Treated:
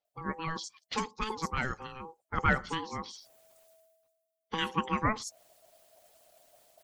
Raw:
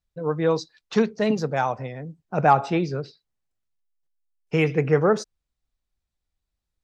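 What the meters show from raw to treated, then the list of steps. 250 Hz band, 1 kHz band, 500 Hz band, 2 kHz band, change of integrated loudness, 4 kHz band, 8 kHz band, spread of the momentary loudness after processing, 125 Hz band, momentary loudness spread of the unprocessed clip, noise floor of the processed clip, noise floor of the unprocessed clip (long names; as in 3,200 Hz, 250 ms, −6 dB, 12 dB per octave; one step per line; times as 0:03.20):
−12.0 dB, −8.5 dB, −18.5 dB, −2.5 dB, −10.5 dB, −0.5 dB, can't be measured, 14 LU, −12.0 dB, 14 LU, −85 dBFS, −84 dBFS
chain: ring modulation 650 Hz
in parallel at 0 dB: downward compressor, threshold −32 dBFS, peak gain reduction 17 dB
on the sum: high-shelf EQ 4,800 Hz +11.5 dB
multiband delay without the direct sound lows, highs 50 ms, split 5,400 Hz
harmonic and percussive parts rebalanced harmonic −11 dB
reversed playback
upward compression, threshold −34 dBFS
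reversed playback
level −5.5 dB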